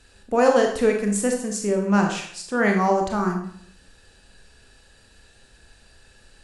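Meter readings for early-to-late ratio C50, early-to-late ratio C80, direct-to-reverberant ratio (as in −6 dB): 5.5 dB, 9.5 dB, 2.0 dB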